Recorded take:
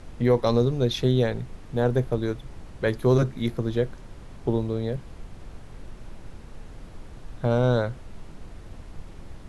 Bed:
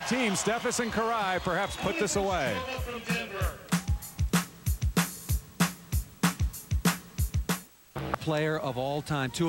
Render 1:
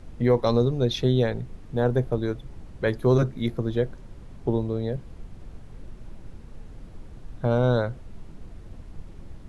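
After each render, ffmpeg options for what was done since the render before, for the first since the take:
-af "afftdn=nr=6:nf=-44"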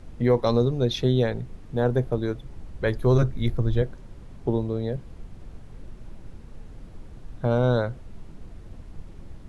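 -filter_complex "[0:a]asettb=1/sr,asplit=3[s0][s1][s2];[s0]atrim=end=2.504[s3];[s1]atrim=start=2.5:end=3.82,asetpts=PTS-STARTPTS,afade=t=in:d=0.004:c=qsin,afade=t=out:st=1.316:d=0.004:c=qsin,asubboost=boost=10.5:cutoff=110[s4];[s2]atrim=start=3.816[s5];[s3][s4]acrossfade=d=0.004:c1=hsin:c2=qsin[s6];[s6][s5]acrossfade=d=0.004:c1=qsin:c2=hsin"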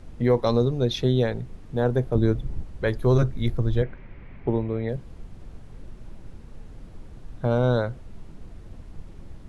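-filter_complex "[0:a]asettb=1/sr,asplit=3[s0][s1][s2];[s0]atrim=end=2.154[s3];[s1]atrim=start=2.15:end=2.63,asetpts=PTS-STARTPTS,afade=t=in:d=0.004:c=qsin,afade=t=out:st=0.476:d=0.004:c=qsin,lowshelf=f=330:g=10.5[s4];[s2]atrim=start=2.626[s5];[s3][s4]acrossfade=d=0.004:c1=hsin:c2=qsin[s6];[s6][s5]acrossfade=d=0.004:c1=qsin:c2=hsin,asettb=1/sr,asplit=3[s7][s8][s9];[s7]atrim=end=3.834[s10];[s8]atrim=start=3.83:end=4.89,asetpts=PTS-STARTPTS,afade=t=in:d=0.004:c=qsin,afade=t=out:st=1.056:d=0.004:c=qsin,lowpass=f=2200:t=q:w=4.4[s11];[s9]atrim=start=4.886[s12];[s10][s11]acrossfade=d=0.004:c1=hsin:c2=qsin[s13];[s13][s12]acrossfade=d=0.004:c1=qsin:c2=hsin"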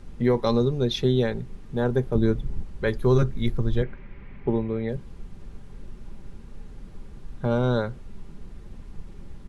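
-af "equalizer=f=650:t=o:w=0.22:g=-8.5,aecho=1:1:5:0.32"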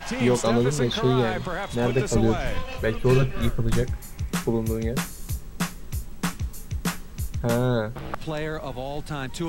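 -filter_complex "[1:a]volume=0.841[s0];[0:a][s0]amix=inputs=2:normalize=0"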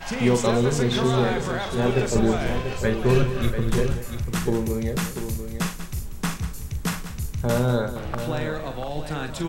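-filter_complex "[0:a]asplit=2[s0][s1];[s1]adelay=41,volume=0.376[s2];[s0][s2]amix=inputs=2:normalize=0,asplit=2[s3][s4];[s4]aecho=0:1:189|691:0.251|0.355[s5];[s3][s5]amix=inputs=2:normalize=0"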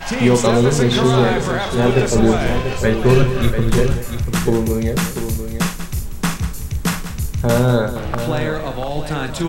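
-af "volume=2.24,alimiter=limit=0.794:level=0:latency=1"

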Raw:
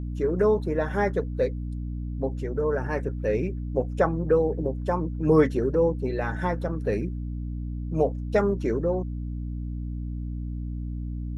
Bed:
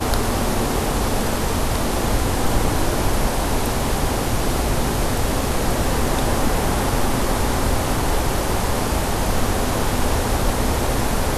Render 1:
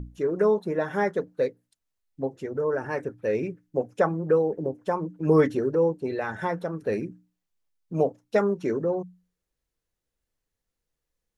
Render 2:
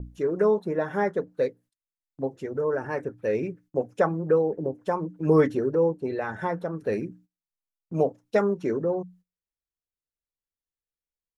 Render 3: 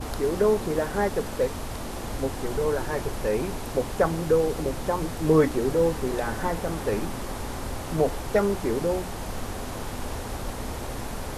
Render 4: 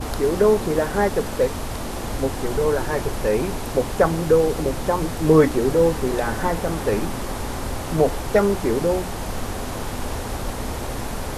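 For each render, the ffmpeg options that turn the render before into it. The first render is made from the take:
-af "bandreject=f=60:t=h:w=6,bandreject=f=120:t=h:w=6,bandreject=f=180:t=h:w=6,bandreject=f=240:t=h:w=6,bandreject=f=300:t=h:w=6"
-af "agate=range=0.141:threshold=0.00251:ratio=16:detection=peak,adynamicequalizer=threshold=0.00794:dfrequency=2000:dqfactor=0.7:tfrequency=2000:tqfactor=0.7:attack=5:release=100:ratio=0.375:range=3:mode=cutabove:tftype=highshelf"
-filter_complex "[1:a]volume=0.224[s0];[0:a][s0]amix=inputs=2:normalize=0"
-af "volume=1.78"

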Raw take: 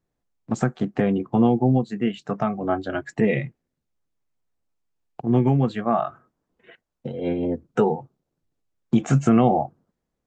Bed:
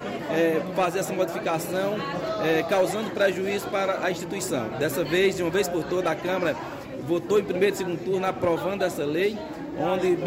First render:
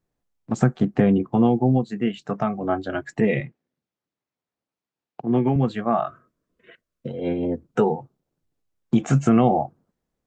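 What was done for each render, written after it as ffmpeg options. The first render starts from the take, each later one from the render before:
-filter_complex "[0:a]asettb=1/sr,asplit=3[s0][s1][s2];[s0]atrim=end=0.594[s3];[s1]atrim=start=0.59:end=1.26,asetpts=PTS-STARTPTS,afade=t=in:d=0.004:c=qsin,afade=t=out:st=0.666:d=0.004:c=qsin,lowshelf=f=290:g=6.5[s4];[s2]atrim=start=1.256[s5];[s3][s4]acrossfade=d=0.004:c1=hsin:c2=qsin[s6];[s6][s5]acrossfade=d=0.004:c1=qsin:c2=hsin,asettb=1/sr,asplit=3[s7][s8][s9];[s7]atrim=end=3.404[s10];[s8]atrim=start=3.4:end=5.56,asetpts=PTS-STARTPTS,afade=t=in:d=0.004:c=qsin,afade=t=out:st=2.156:d=0.004:c=qsin,highpass=150,lowpass=5000[s11];[s9]atrim=start=5.556[s12];[s10][s11]acrossfade=d=0.004:c1=hsin:c2=qsin[s13];[s13][s12]acrossfade=d=0.004:c1=qsin:c2=hsin,asettb=1/sr,asplit=3[s14][s15][s16];[s14]atrim=end=6.074[s17];[s15]atrim=start=6.07:end=7.1,asetpts=PTS-STARTPTS,afade=t=in:d=0.004:c=qsin,afade=t=out:st=1.026:d=0.004:c=qsin,asuperstop=centerf=820:order=4:qfactor=2.7[s18];[s16]atrim=start=7.096[s19];[s17][s18]acrossfade=d=0.004:c1=hsin:c2=qsin[s20];[s20][s19]acrossfade=d=0.004:c1=qsin:c2=hsin"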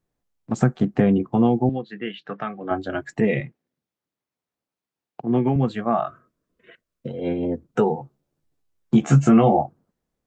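-filter_complex "[0:a]asettb=1/sr,asplit=3[s0][s1][s2];[s0]atrim=end=1.694[s3];[s1]atrim=start=1.69:end=2.71,asetpts=PTS-STARTPTS,afade=t=in:d=0.004:c=qsin,afade=t=out:st=1.016:d=0.004:c=qsin,highpass=240,equalizer=f=240:t=q:w=4:g=-8,equalizer=f=400:t=q:w=4:g=-4,equalizer=f=660:t=q:w=4:g=-8,equalizer=f=960:t=q:w=4:g=-7,equalizer=f=1700:t=q:w=4:g=6,equalizer=f=3300:t=q:w=4:g=4,lowpass=f=4000:w=0.5412,lowpass=f=4000:w=1.3066[s4];[s2]atrim=start=2.706[s5];[s3][s4]acrossfade=d=0.004:c1=hsin:c2=qsin[s6];[s6][s5]acrossfade=d=0.004:c1=qsin:c2=hsin,asettb=1/sr,asplit=3[s7][s8][s9];[s7]atrim=end=7.964[s10];[s8]atrim=start=7.96:end=9.62,asetpts=PTS-STARTPTS,afade=t=in:d=0.004:c=qsin,afade=t=out:st=1.656:d=0.004:c=qsin,asplit=2[s11][s12];[s12]adelay=14,volume=0.708[s13];[s11][s13]amix=inputs=2:normalize=0,atrim=end_sample=73206[s14];[s9]atrim=start=9.616[s15];[s10][s14]acrossfade=d=0.004:c1=hsin:c2=qsin[s16];[s16][s15]acrossfade=d=0.004:c1=qsin:c2=hsin"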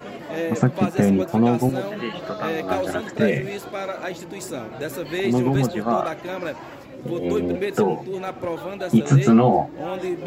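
-filter_complex "[1:a]volume=0.631[s0];[0:a][s0]amix=inputs=2:normalize=0"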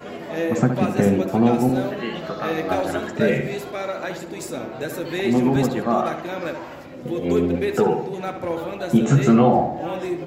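-filter_complex "[0:a]asplit=2[s0][s1];[s1]adelay=12,volume=0.266[s2];[s0][s2]amix=inputs=2:normalize=0,asplit=2[s3][s4];[s4]adelay=69,lowpass=f=2700:p=1,volume=0.447,asplit=2[s5][s6];[s6]adelay=69,lowpass=f=2700:p=1,volume=0.53,asplit=2[s7][s8];[s8]adelay=69,lowpass=f=2700:p=1,volume=0.53,asplit=2[s9][s10];[s10]adelay=69,lowpass=f=2700:p=1,volume=0.53,asplit=2[s11][s12];[s12]adelay=69,lowpass=f=2700:p=1,volume=0.53,asplit=2[s13][s14];[s14]adelay=69,lowpass=f=2700:p=1,volume=0.53[s15];[s3][s5][s7][s9][s11][s13][s15]amix=inputs=7:normalize=0"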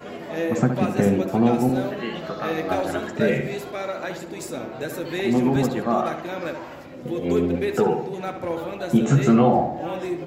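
-af "volume=0.841"

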